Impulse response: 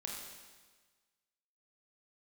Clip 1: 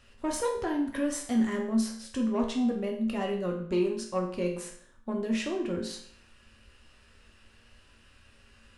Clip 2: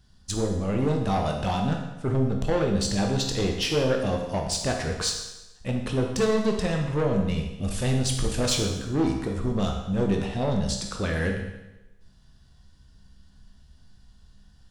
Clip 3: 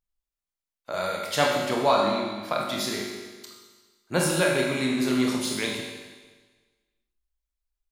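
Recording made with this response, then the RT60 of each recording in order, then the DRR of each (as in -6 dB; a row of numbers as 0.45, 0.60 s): 3; 0.60, 1.0, 1.4 s; 0.5, 1.5, -2.0 dB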